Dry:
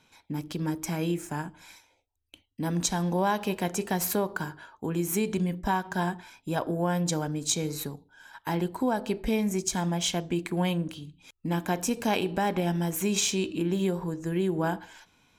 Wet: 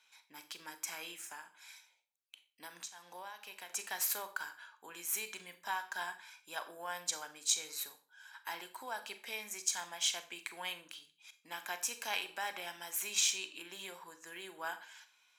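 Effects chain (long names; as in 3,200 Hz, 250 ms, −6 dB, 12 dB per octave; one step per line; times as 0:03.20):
high-pass filter 1,300 Hz 12 dB per octave
0:01.32–0:03.70: downward compressor 6 to 1, threshold −42 dBFS, peak gain reduction 17.5 dB
four-comb reverb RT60 0.34 s, combs from 30 ms, DRR 10.5 dB
level −3.5 dB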